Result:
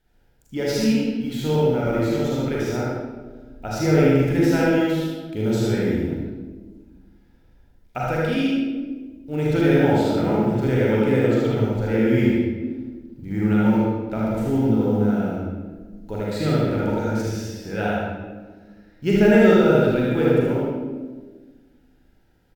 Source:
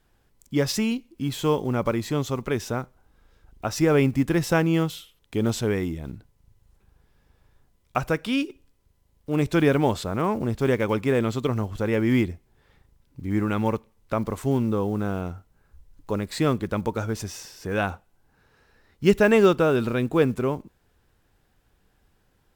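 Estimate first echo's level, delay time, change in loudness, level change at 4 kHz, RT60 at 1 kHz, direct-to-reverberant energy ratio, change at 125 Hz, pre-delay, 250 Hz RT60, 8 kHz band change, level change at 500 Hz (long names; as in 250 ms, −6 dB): −2.5 dB, 77 ms, +3.5 dB, +0.5 dB, 1.2 s, −6.5 dB, +4.0 dB, 33 ms, 2.0 s, can't be measured, +3.5 dB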